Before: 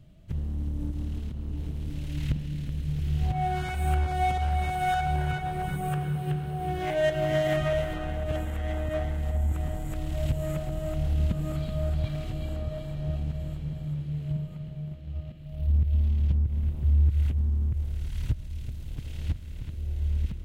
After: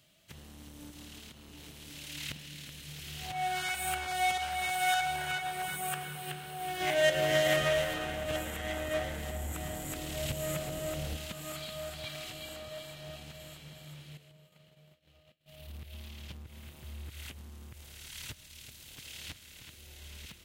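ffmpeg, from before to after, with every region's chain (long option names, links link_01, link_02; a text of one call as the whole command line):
ffmpeg -i in.wav -filter_complex "[0:a]asettb=1/sr,asplit=3[link_01][link_02][link_03];[link_01]atrim=end=6.804[link_04];[link_02]atrim=start=6.8:end=11.17,asetpts=PTS-STARTPTS,afade=type=in:duration=0.004:curve=qsin,afade=type=out:start_time=4.366:duration=0.004:curve=qsin,lowshelf=frequency=380:gain=11,asplit=8[link_05][link_06][link_07][link_08][link_09][link_10][link_11][link_12];[link_06]adelay=115,afreqshift=-85,volume=-14dB[link_13];[link_07]adelay=230,afreqshift=-170,volume=-18.3dB[link_14];[link_08]adelay=345,afreqshift=-255,volume=-22.6dB[link_15];[link_09]adelay=460,afreqshift=-340,volume=-26.9dB[link_16];[link_10]adelay=575,afreqshift=-425,volume=-31.2dB[link_17];[link_11]adelay=690,afreqshift=-510,volume=-35.5dB[link_18];[link_12]adelay=805,afreqshift=-595,volume=-39.8dB[link_19];[link_05][link_13][link_14][link_15][link_16][link_17][link_18][link_19]amix=inputs=8:normalize=0,atrim=end_sample=192717[link_20];[link_03]atrim=start=11.166[link_21];[link_04][link_20]acrossfade=duration=0.004:curve1=hsin:curve2=qsin[link_22];[link_22][link_21]acrossfade=duration=0.004:curve1=qsin:curve2=hsin,asettb=1/sr,asplit=3[link_23][link_24][link_25];[link_23]atrim=end=14.174[link_26];[link_24]atrim=start=14.17:end=15.48,asetpts=PTS-STARTPTS,afade=type=in:duration=0.004:curve=qsin,afade=type=out:start_time=1.306:duration=0.004:curve=qsin,agate=range=-33dB:threshold=-33dB:ratio=3:release=100:detection=peak,equalizer=frequency=500:width_type=o:width=0.58:gain=5.5,acompressor=threshold=-42dB:ratio=4:attack=3.2:release=140:knee=1:detection=peak[link_27];[link_25]atrim=start=15.476[link_28];[link_26][link_27]acrossfade=duration=0.004:curve1=hsin:curve2=qsin[link_29];[link_29][link_28]acrossfade=duration=0.004:curve1=qsin:curve2=hsin,highpass=frequency=1400:poles=1,highshelf=frequency=2400:gain=8.5,volume=2dB" out.wav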